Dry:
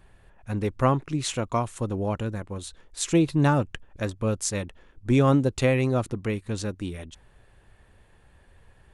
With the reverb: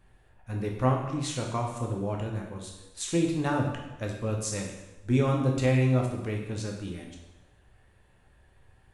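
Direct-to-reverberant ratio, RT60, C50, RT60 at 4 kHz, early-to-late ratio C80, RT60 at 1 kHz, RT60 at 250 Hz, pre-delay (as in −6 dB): 0.0 dB, 1.0 s, 4.5 dB, 0.95 s, 7.0 dB, 1.0 s, 0.95 s, 6 ms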